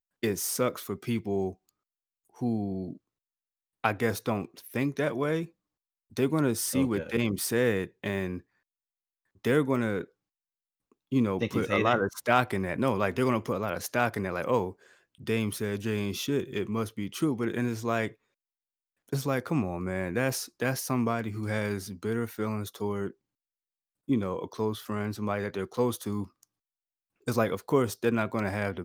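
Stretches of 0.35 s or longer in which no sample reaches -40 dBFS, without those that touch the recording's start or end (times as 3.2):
1.53–2.39
2.93–3.84
5.45–6.17
8.39–9.45
10.04–11.12
14.72–15.21
18.09–19.09
23.11–24.09
26.43–27.27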